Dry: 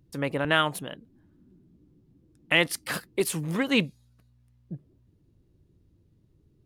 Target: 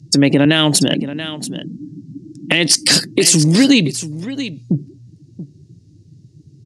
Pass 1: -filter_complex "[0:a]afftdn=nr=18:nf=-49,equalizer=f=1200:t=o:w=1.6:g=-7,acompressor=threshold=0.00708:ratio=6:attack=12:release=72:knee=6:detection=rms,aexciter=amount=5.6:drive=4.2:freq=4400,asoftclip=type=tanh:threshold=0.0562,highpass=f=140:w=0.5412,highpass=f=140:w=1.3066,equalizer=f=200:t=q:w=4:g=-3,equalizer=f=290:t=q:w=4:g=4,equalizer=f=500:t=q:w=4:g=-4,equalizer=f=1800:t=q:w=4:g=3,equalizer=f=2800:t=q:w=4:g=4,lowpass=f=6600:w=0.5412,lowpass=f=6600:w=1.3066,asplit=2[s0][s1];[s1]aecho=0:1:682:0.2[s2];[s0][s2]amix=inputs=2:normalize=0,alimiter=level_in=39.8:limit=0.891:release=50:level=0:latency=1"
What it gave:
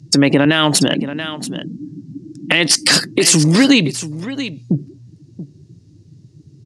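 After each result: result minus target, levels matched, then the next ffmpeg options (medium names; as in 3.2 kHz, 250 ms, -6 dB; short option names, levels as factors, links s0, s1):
saturation: distortion +7 dB; 1 kHz band +4.5 dB
-filter_complex "[0:a]afftdn=nr=18:nf=-49,equalizer=f=1200:t=o:w=1.6:g=-7,acompressor=threshold=0.00708:ratio=6:attack=12:release=72:knee=6:detection=rms,aexciter=amount=5.6:drive=4.2:freq=4400,asoftclip=type=tanh:threshold=0.112,highpass=f=140:w=0.5412,highpass=f=140:w=1.3066,equalizer=f=200:t=q:w=4:g=-3,equalizer=f=290:t=q:w=4:g=4,equalizer=f=500:t=q:w=4:g=-4,equalizer=f=1800:t=q:w=4:g=3,equalizer=f=2800:t=q:w=4:g=4,lowpass=f=6600:w=0.5412,lowpass=f=6600:w=1.3066,asplit=2[s0][s1];[s1]aecho=0:1:682:0.2[s2];[s0][s2]amix=inputs=2:normalize=0,alimiter=level_in=39.8:limit=0.891:release=50:level=0:latency=1"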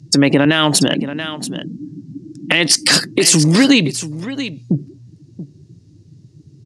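1 kHz band +4.0 dB
-filter_complex "[0:a]afftdn=nr=18:nf=-49,equalizer=f=1200:t=o:w=1.6:g=-17,acompressor=threshold=0.00708:ratio=6:attack=12:release=72:knee=6:detection=rms,aexciter=amount=5.6:drive=4.2:freq=4400,asoftclip=type=tanh:threshold=0.112,highpass=f=140:w=0.5412,highpass=f=140:w=1.3066,equalizer=f=200:t=q:w=4:g=-3,equalizer=f=290:t=q:w=4:g=4,equalizer=f=500:t=q:w=4:g=-4,equalizer=f=1800:t=q:w=4:g=3,equalizer=f=2800:t=q:w=4:g=4,lowpass=f=6600:w=0.5412,lowpass=f=6600:w=1.3066,asplit=2[s0][s1];[s1]aecho=0:1:682:0.2[s2];[s0][s2]amix=inputs=2:normalize=0,alimiter=level_in=39.8:limit=0.891:release=50:level=0:latency=1"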